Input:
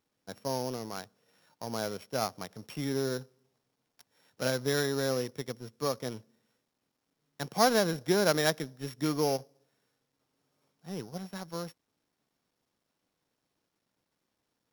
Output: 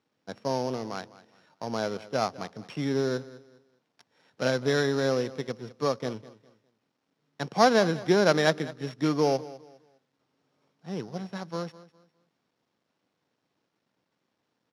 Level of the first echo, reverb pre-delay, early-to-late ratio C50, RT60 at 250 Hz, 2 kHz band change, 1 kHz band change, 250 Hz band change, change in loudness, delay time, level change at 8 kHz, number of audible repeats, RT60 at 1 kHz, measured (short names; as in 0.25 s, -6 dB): -18.0 dB, none, none, none, +4.5 dB, +4.5 dB, +4.5 dB, +4.0 dB, 0.204 s, -3.5 dB, 2, none